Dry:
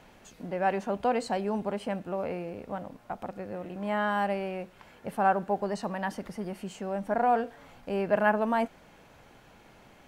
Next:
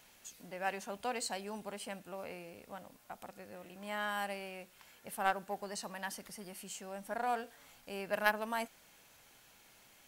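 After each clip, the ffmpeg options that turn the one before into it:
ffmpeg -i in.wav -af "crystalizer=i=9.5:c=0,aeval=exprs='0.596*(cos(1*acos(clip(val(0)/0.596,-1,1)))-cos(1*PI/2))+0.119*(cos(3*acos(clip(val(0)/0.596,-1,1)))-cos(3*PI/2))':channel_layout=same,volume=-7dB" out.wav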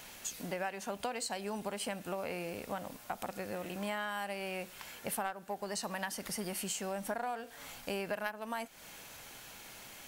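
ffmpeg -i in.wav -af "acompressor=threshold=-45dB:ratio=16,volume=11.5dB" out.wav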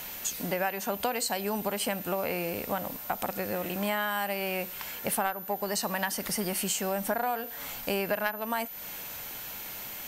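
ffmpeg -i in.wav -af "aeval=exprs='val(0)+0.00447*sin(2*PI*14000*n/s)':channel_layout=same,volume=7.5dB" out.wav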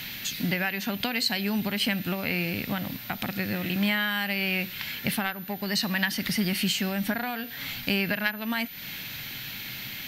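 ffmpeg -i in.wav -af "equalizer=frequency=125:width_type=o:width=1:gain=12,equalizer=frequency=250:width_type=o:width=1:gain=6,equalizer=frequency=500:width_type=o:width=1:gain=-7,equalizer=frequency=1000:width_type=o:width=1:gain=-6,equalizer=frequency=2000:width_type=o:width=1:gain=8,equalizer=frequency=4000:width_type=o:width=1:gain=11,equalizer=frequency=8000:width_type=o:width=1:gain=-9" out.wav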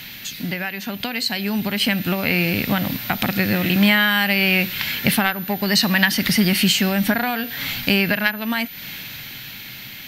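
ffmpeg -i in.wav -af "dynaudnorm=framelen=420:gausssize=9:maxgain=11.5dB,volume=1dB" out.wav

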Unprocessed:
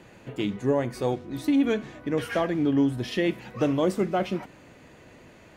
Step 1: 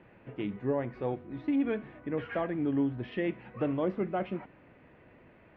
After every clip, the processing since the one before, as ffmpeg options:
ffmpeg -i in.wav -af "lowpass=frequency=2600:width=0.5412,lowpass=frequency=2600:width=1.3066,volume=-6.5dB" out.wav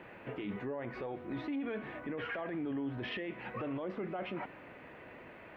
ffmpeg -i in.wav -af "lowshelf=frequency=290:gain=-11.5,acompressor=threshold=-38dB:ratio=6,alimiter=level_in=16.5dB:limit=-24dB:level=0:latency=1:release=15,volume=-16.5dB,volume=9.5dB" out.wav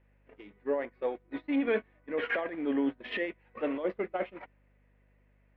ffmpeg -i in.wav -af "equalizer=frequency=125:width_type=o:width=1:gain=-10,equalizer=frequency=250:width_type=o:width=1:gain=9,equalizer=frequency=500:width_type=o:width=1:gain=11,equalizer=frequency=1000:width_type=o:width=1:gain=5,equalizer=frequency=2000:width_type=o:width=1:gain=11,equalizer=frequency=4000:width_type=o:width=1:gain=10,agate=range=-35dB:threshold=-26dB:ratio=16:detection=peak,aeval=exprs='val(0)+0.000562*(sin(2*PI*50*n/s)+sin(2*PI*2*50*n/s)/2+sin(2*PI*3*50*n/s)/3+sin(2*PI*4*50*n/s)/4+sin(2*PI*5*50*n/s)/5)':channel_layout=same" out.wav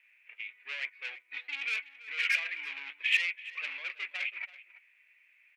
ffmpeg -i in.wav -filter_complex "[0:a]asoftclip=type=tanh:threshold=-35.5dB,highpass=frequency=2400:width_type=q:width=6.4,asplit=2[link_01][link_02];[link_02]adelay=332.4,volume=-16dB,highshelf=frequency=4000:gain=-7.48[link_03];[link_01][link_03]amix=inputs=2:normalize=0,volume=6dB" out.wav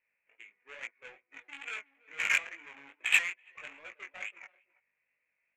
ffmpeg -i in.wav -af "adynamicsmooth=sensitivity=1.5:basefreq=640,flanger=delay=17.5:depth=4.5:speed=2.3,volume=8dB" out.wav

